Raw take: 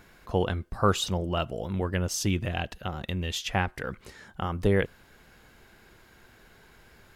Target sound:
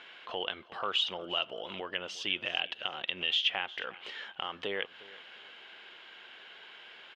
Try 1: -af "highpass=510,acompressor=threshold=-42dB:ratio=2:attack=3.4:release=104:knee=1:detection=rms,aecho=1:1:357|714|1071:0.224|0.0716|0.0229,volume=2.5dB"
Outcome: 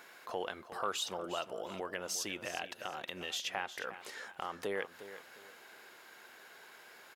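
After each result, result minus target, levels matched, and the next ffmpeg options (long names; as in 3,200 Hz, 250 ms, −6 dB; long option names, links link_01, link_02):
4,000 Hz band −5.0 dB; echo-to-direct +6.5 dB
-af "highpass=510,acompressor=threshold=-42dB:ratio=2:attack=3.4:release=104:knee=1:detection=rms,lowpass=frequency=3100:width_type=q:width=5.9,aecho=1:1:357|714|1071:0.224|0.0716|0.0229,volume=2.5dB"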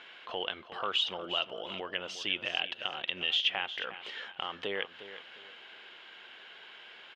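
echo-to-direct +6.5 dB
-af "highpass=510,acompressor=threshold=-42dB:ratio=2:attack=3.4:release=104:knee=1:detection=rms,lowpass=frequency=3100:width_type=q:width=5.9,aecho=1:1:357|714|1071:0.106|0.0339|0.0108,volume=2.5dB"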